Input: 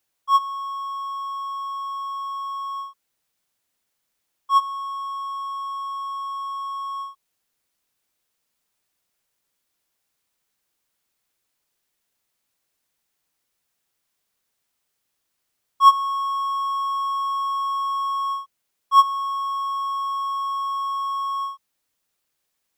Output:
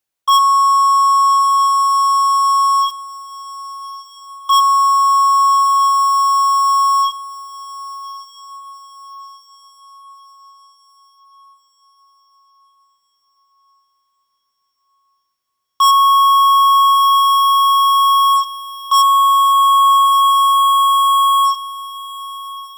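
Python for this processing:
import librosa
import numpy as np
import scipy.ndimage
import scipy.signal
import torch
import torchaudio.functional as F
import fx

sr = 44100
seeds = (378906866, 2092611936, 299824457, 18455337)

p1 = fx.high_shelf(x, sr, hz=4000.0, db=8.0, at=(2.87, 4.53))
p2 = fx.leveller(p1, sr, passes=5)
p3 = 10.0 ** (-14.5 / 20.0) * np.tanh(p2 / 10.0 ** (-14.5 / 20.0))
p4 = p3 + fx.echo_diffused(p3, sr, ms=1237, feedback_pct=47, wet_db=-14.5, dry=0)
y = F.gain(torch.from_numpy(p4), 5.5).numpy()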